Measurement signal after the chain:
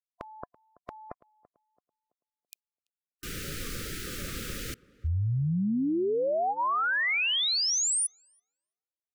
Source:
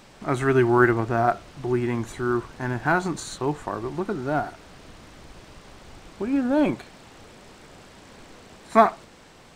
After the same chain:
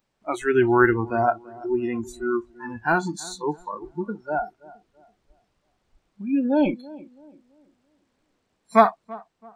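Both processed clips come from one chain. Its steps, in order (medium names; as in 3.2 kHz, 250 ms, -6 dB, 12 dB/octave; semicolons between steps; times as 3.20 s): spectral noise reduction 27 dB; on a send: tape echo 333 ms, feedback 39%, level -18.5 dB, low-pass 1 kHz; on the sum: trim +1 dB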